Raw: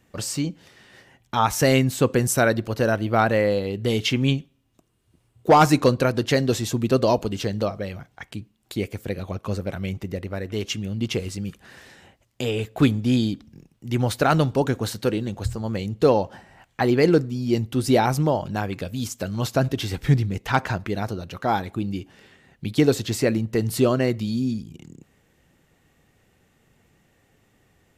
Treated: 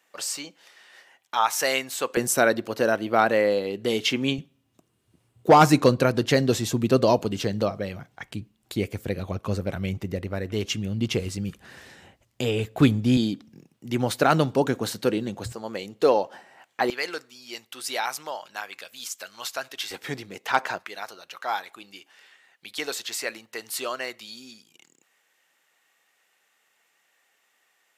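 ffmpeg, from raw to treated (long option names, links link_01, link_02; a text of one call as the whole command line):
ffmpeg -i in.wav -af "asetnsamples=nb_out_samples=441:pad=0,asendcmd='2.17 highpass f 260;4.38 highpass f 100;8.24 highpass f 45;13.17 highpass f 170;15.52 highpass f 380;16.9 highpass f 1200;19.91 highpass f 480;20.79 highpass f 1000',highpass=710" out.wav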